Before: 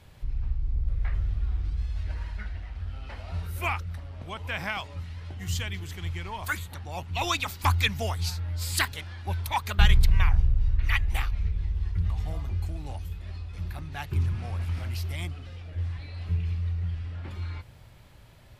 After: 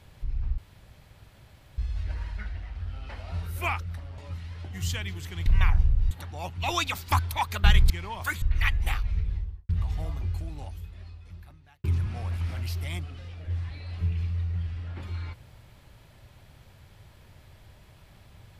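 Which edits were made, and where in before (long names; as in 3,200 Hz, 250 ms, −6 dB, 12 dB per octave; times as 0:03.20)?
0:00.58–0:01.78: fill with room tone
0:04.18–0:04.84: remove
0:06.12–0:06.64: swap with 0:10.05–0:10.70
0:07.72–0:09.34: remove
0:11.55–0:11.97: fade out and dull
0:12.49–0:14.12: fade out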